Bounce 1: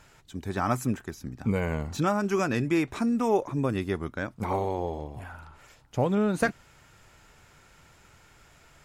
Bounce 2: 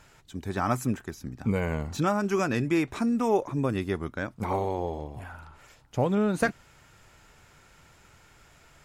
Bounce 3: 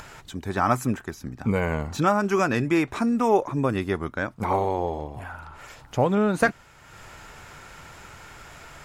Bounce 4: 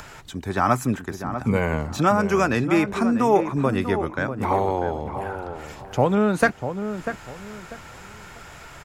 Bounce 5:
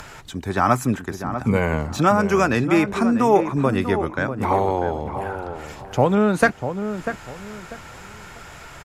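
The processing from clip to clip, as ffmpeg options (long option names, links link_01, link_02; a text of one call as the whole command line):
ffmpeg -i in.wav -af anull out.wav
ffmpeg -i in.wav -af "equalizer=frequency=1100:width_type=o:width=2.2:gain=4.5,acompressor=mode=upward:threshold=-37dB:ratio=2.5,volume=2dB" out.wav
ffmpeg -i in.wav -filter_complex "[0:a]acrossover=split=190|1000|4900[link_01][link_02][link_03][link_04];[link_04]volume=30.5dB,asoftclip=hard,volume=-30.5dB[link_05];[link_01][link_02][link_03][link_05]amix=inputs=4:normalize=0,asplit=2[link_06][link_07];[link_07]adelay=644,lowpass=frequency=1400:poles=1,volume=-8.5dB,asplit=2[link_08][link_09];[link_09]adelay=644,lowpass=frequency=1400:poles=1,volume=0.29,asplit=2[link_10][link_11];[link_11]adelay=644,lowpass=frequency=1400:poles=1,volume=0.29[link_12];[link_06][link_08][link_10][link_12]amix=inputs=4:normalize=0,volume=2dB" out.wav
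ffmpeg -i in.wav -af "aresample=32000,aresample=44100,volume=2dB" out.wav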